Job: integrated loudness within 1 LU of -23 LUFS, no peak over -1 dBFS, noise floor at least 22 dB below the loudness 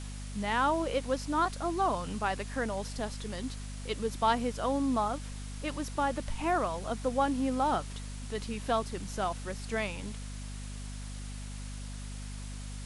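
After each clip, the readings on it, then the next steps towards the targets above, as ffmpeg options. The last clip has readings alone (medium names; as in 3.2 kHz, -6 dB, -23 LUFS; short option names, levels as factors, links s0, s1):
hum 50 Hz; highest harmonic 250 Hz; hum level -38 dBFS; noise floor -41 dBFS; noise floor target -56 dBFS; loudness -33.5 LUFS; peak level -15.0 dBFS; loudness target -23.0 LUFS
-> -af "bandreject=f=50:t=h:w=6,bandreject=f=100:t=h:w=6,bandreject=f=150:t=h:w=6,bandreject=f=200:t=h:w=6,bandreject=f=250:t=h:w=6"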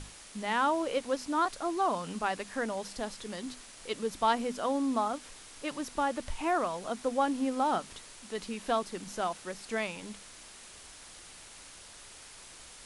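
hum not found; noise floor -51 dBFS; noise floor target -55 dBFS
-> -af "afftdn=nr=6:nf=-51"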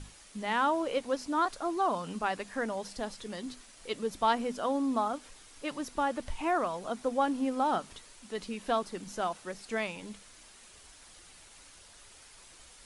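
noise floor -55 dBFS; loudness -32.5 LUFS; peak level -15.5 dBFS; loudness target -23.0 LUFS
-> -af "volume=2.99"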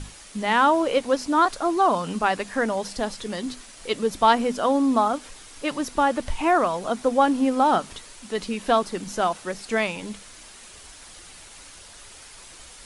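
loudness -23.0 LUFS; peak level -6.0 dBFS; noise floor -46 dBFS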